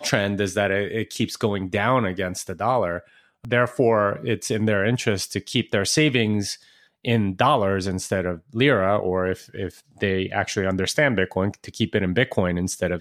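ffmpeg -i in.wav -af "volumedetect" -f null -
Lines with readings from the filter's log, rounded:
mean_volume: -22.8 dB
max_volume: -4.2 dB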